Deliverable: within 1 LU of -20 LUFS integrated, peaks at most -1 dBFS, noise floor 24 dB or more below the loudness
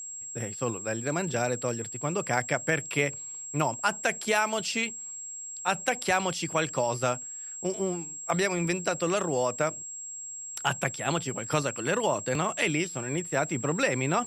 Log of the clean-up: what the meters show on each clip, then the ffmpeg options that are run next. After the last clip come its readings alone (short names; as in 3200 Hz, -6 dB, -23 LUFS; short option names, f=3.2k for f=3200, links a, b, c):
steady tone 7600 Hz; tone level -37 dBFS; loudness -29.0 LUFS; peak -11.0 dBFS; loudness target -20.0 LUFS
-> -af "bandreject=f=7.6k:w=30"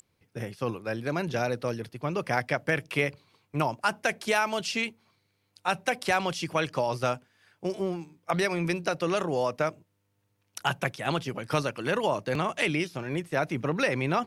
steady tone none; loudness -29.5 LUFS; peak -11.5 dBFS; loudness target -20.0 LUFS
-> -af "volume=9.5dB"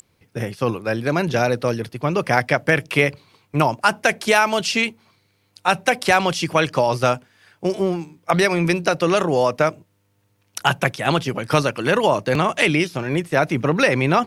loudness -20.0 LUFS; peak -2.0 dBFS; noise floor -65 dBFS